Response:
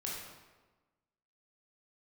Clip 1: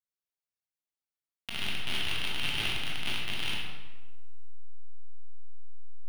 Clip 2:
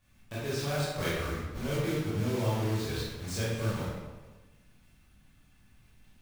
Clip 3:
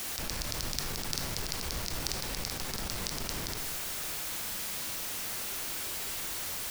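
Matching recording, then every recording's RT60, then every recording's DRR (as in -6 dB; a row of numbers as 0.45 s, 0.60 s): 1; 1.3 s, 1.3 s, 1.3 s; -4.5 dB, -10.0 dB, 4.0 dB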